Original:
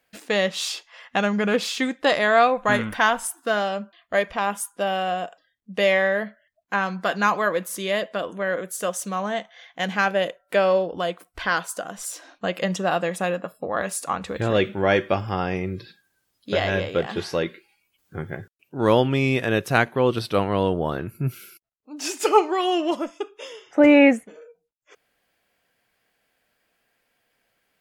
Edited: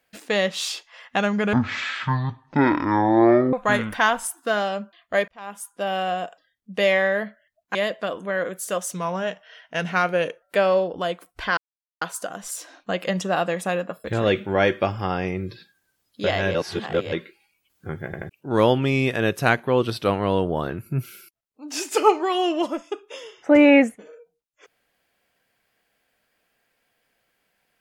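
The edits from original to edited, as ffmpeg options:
ffmpeg -i in.wav -filter_complex "[0:a]asplit=14[link_01][link_02][link_03][link_04][link_05][link_06][link_07][link_08][link_09][link_10][link_11][link_12][link_13][link_14];[link_01]atrim=end=1.534[link_15];[link_02]atrim=start=1.53:end=2.53,asetpts=PTS-STARTPTS,asetrate=22050,aresample=44100[link_16];[link_03]atrim=start=2.526:end=4.28,asetpts=PTS-STARTPTS,afade=type=out:start_time=1.75:duration=0.004:curve=hsin[link_17];[link_04]atrim=start=4.28:end=6.752,asetpts=PTS-STARTPTS,afade=type=in:duration=0.71[link_18];[link_05]atrim=start=7.868:end=9.064[link_19];[link_06]atrim=start=9.06:end=10.41,asetpts=PTS-STARTPTS,asetrate=40131,aresample=44100,atrim=end_sample=65423,asetpts=PTS-STARTPTS[link_20];[link_07]atrim=start=10.406:end=11.56,asetpts=PTS-STARTPTS,afade=type=out:start_time=1.15:duration=0.004:curve=hsin,apad=pad_dur=0.44[link_21];[link_08]atrim=start=11.56:end=13.592,asetpts=PTS-STARTPTS,afade=type=in:duration=0.004:curve=hsin[link_22];[link_09]atrim=start=14.328:end=16.832[link_23];[link_10]atrim=start=16.828:end=17.412,asetpts=PTS-STARTPTS,areverse[link_24];[link_11]atrim=start=17.408:end=18.422[link_25];[link_12]atrim=start=18.338:end=18.422[link_26];[link_13]atrim=start=18.338:end=18.422[link_27];[link_14]atrim=start=18.578[link_28];[link_15][link_16]acrossfade=duration=0.004:curve1=hsin:curve2=hsin[link_29];[link_17][link_18]concat=n=2:v=0:a=1[link_30];[link_29][link_30]acrossfade=duration=0.004:curve1=hsin:curve2=hsin[link_31];[link_31][link_19]acrossfade=duration=0.004:curve1=hsin:curve2=hsin[link_32];[link_32][link_20]acrossfade=duration=0.004:curve1=hsin:curve2=hsin[link_33];[link_21][link_22]concat=n=2:v=0:a=1[link_34];[link_33][link_34]acrossfade=duration=0.004:curve1=hsin:curve2=hsin[link_35];[link_35][link_23]acrossfade=duration=0.004:curve1=hsin:curve2=hsin[link_36];[link_36][link_24]acrossfade=duration=0.004:curve1=hsin:curve2=hsin[link_37];[link_37][link_25]acrossfade=duration=0.004:curve1=hsin:curve2=hsin[link_38];[link_38][link_26]acrossfade=duration=0.004:curve1=hsin:curve2=hsin[link_39];[link_39][link_27]acrossfade=duration=0.004:curve1=hsin:curve2=hsin[link_40];[link_40][link_28]acrossfade=duration=0.004:curve1=hsin:curve2=hsin" out.wav

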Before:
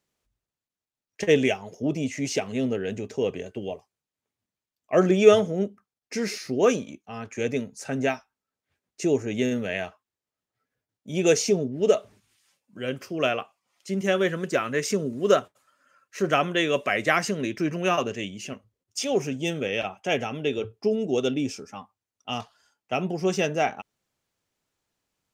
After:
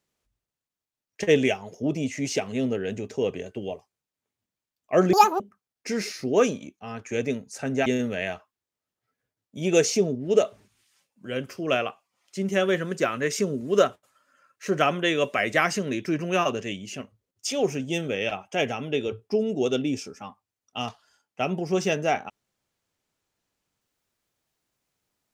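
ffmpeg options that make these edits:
ffmpeg -i in.wav -filter_complex "[0:a]asplit=4[link_01][link_02][link_03][link_04];[link_01]atrim=end=5.134[link_05];[link_02]atrim=start=5.13:end=5.66,asetpts=PTS-STARTPTS,asetrate=86877,aresample=44100,atrim=end_sample=11864,asetpts=PTS-STARTPTS[link_06];[link_03]atrim=start=5.656:end=8.122[link_07];[link_04]atrim=start=9.378[link_08];[link_05][link_06]acrossfade=duration=0.004:curve1=hsin:curve2=hsin[link_09];[link_09][link_07]acrossfade=duration=0.004:curve1=hsin:curve2=hsin[link_10];[link_10][link_08]acrossfade=duration=0.004:curve1=hsin:curve2=hsin" out.wav

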